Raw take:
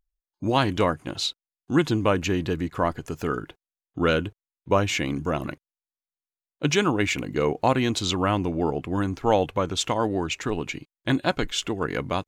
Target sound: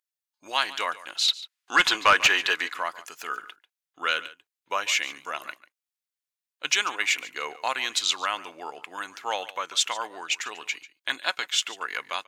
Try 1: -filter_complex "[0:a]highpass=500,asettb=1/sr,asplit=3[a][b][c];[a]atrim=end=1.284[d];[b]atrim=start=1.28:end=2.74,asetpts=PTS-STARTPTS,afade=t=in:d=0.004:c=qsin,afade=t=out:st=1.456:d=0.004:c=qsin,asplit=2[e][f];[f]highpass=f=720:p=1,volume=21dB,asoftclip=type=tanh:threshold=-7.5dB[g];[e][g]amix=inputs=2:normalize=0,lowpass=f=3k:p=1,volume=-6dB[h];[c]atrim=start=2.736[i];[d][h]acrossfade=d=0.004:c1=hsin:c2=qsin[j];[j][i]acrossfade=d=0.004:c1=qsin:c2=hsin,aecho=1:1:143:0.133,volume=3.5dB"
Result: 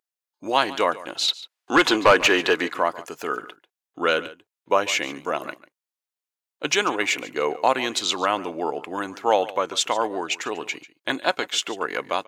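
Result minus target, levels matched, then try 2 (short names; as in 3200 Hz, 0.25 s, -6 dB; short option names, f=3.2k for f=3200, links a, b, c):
500 Hz band +11.0 dB
-filter_complex "[0:a]highpass=1.4k,asettb=1/sr,asplit=3[a][b][c];[a]atrim=end=1.284[d];[b]atrim=start=1.28:end=2.74,asetpts=PTS-STARTPTS,afade=t=in:d=0.004:c=qsin,afade=t=out:st=1.456:d=0.004:c=qsin,asplit=2[e][f];[f]highpass=f=720:p=1,volume=21dB,asoftclip=type=tanh:threshold=-7.5dB[g];[e][g]amix=inputs=2:normalize=0,lowpass=f=3k:p=1,volume=-6dB[h];[c]atrim=start=2.736[i];[d][h]acrossfade=d=0.004:c1=hsin:c2=qsin[j];[j][i]acrossfade=d=0.004:c1=qsin:c2=hsin,aecho=1:1:143:0.133,volume=3.5dB"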